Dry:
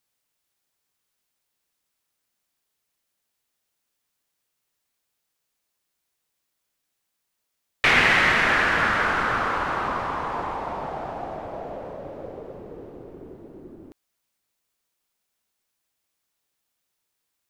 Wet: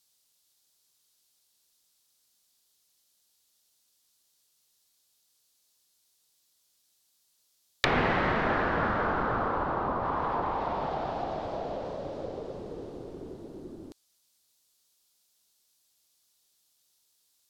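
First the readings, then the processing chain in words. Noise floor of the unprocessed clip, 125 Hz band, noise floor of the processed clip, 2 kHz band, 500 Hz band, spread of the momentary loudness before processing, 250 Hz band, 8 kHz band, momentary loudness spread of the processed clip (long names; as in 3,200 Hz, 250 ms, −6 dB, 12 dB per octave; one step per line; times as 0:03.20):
−79 dBFS, 0.0 dB, −72 dBFS, −12.0 dB, −0.5 dB, 21 LU, 0.0 dB, below −10 dB, 17 LU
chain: treble cut that deepens with the level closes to 980 Hz, closed at −23 dBFS
high shelf with overshoot 3,000 Hz +9 dB, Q 1.5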